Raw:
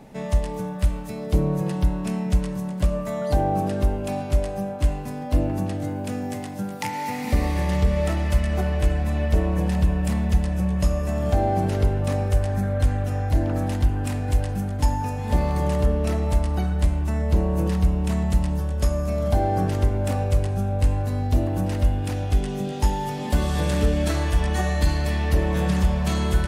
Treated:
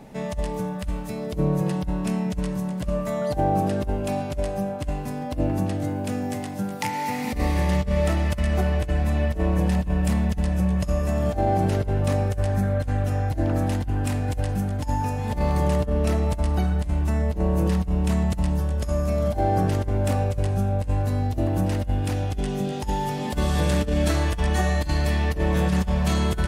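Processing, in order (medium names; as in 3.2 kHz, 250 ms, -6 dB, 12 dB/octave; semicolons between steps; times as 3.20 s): compressor with a negative ratio -21 dBFS, ratio -0.5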